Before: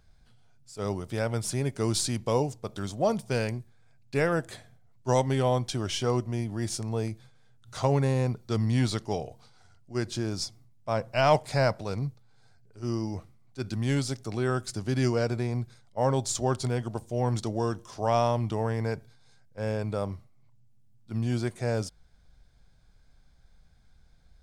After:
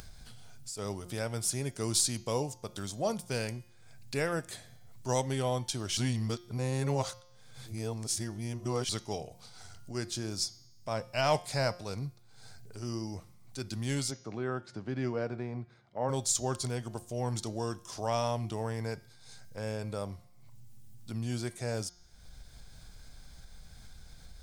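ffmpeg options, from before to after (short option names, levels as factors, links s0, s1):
-filter_complex "[0:a]asplit=3[s0][s1][s2];[s0]afade=t=out:st=14.1:d=0.02[s3];[s1]highpass=130,lowpass=2000,afade=t=in:st=14.1:d=0.02,afade=t=out:st=16.08:d=0.02[s4];[s2]afade=t=in:st=16.08:d=0.02[s5];[s3][s4][s5]amix=inputs=3:normalize=0,asplit=3[s6][s7][s8];[s6]atrim=end=5.972[s9];[s7]atrim=start=5.968:end=8.892,asetpts=PTS-STARTPTS,areverse[s10];[s8]atrim=start=8.888[s11];[s9][s10]acrossfade=d=0.004:c1=hsin:c2=hsin[s12];[s12][s11]acrossfade=d=0.004:c1=hsin:c2=hsin,highshelf=f=4000:g=11.5,bandreject=f=177.1:t=h:w=4,bandreject=f=354.2:t=h:w=4,bandreject=f=531.3:t=h:w=4,bandreject=f=708.4:t=h:w=4,bandreject=f=885.5:t=h:w=4,bandreject=f=1062.6:t=h:w=4,bandreject=f=1239.7:t=h:w=4,bandreject=f=1416.8:t=h:w=4,bandreject=f=1593.9:t=h:w=4,bandreject=f=1771:t=h:w=4,bandreject=f=1948.1:t=h:w=4,bandreject=f=2125.2:t=h:w=4,bandreject=f=2302.3:t=h:w=4,bandreject=f=2479.4:t=h:w=4,bandreject=f=2656.5:t=h:w=4,bandreject=f=2833.6:t=h:w=4,bandreject=f=3010.7:t=h:w=4,bandreject=f=3187.8:t=h:w=4,bandreject=f=3364.9:t=h:w=4,bandreject=f=3542:t=h:w=4,bandreject=f=3719.1:t=h:w=4,bandreject=f=3896.2:t=h:w=4,bandreject=f=4073.3:t=h:w=4,bandreject=f=4250.4:t=h:w=4,bandreject=f=4427.5:t=h:w=4,bandreject=f=4604.6:t=h:w=4,bandreject=f=4781.7:t=h:w=4,bandreject=f=4958.8:t=h:w=4,bandreject=f=5135.9:t=h:w=4,bandreject=f=5313:t=h:w=4,bandreject=f=5490.1:t=h:w=4,bandreject=f=5667.2:t=h:w=4,bandreject=f=5844.3:t=h:w=4,bandreject=f=6021.4:t=h:w=4,bandreject=f=6198.5:t=h:w=4,bandreject=f=6375.6:t=h:w=4,bandreject=f=6552.7:t=h:w=4,bandreject=f=6729.8:t=h:w=4,bandreject=f=6906.9:t=h:w=4,acompressor=mode=upward:threshold=0.0398:ratio=2.5,volume=0.473"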